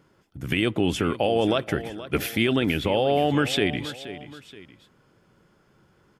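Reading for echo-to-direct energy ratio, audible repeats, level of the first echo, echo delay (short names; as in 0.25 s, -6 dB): -14.0 dB, 2, -14.5 dB, 0.476 s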